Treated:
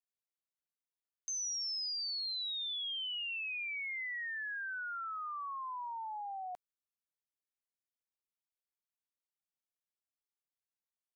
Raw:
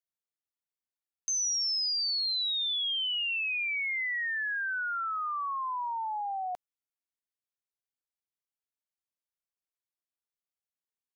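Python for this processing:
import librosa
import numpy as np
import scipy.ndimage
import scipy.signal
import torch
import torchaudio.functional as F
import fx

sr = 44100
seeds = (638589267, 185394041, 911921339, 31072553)

y = fx.highpass(x, sr, hz=250.0, slope=12, at=(4.37, 5.09))
y = F.gain(torch.from_numpy(y), -8.0).numpy()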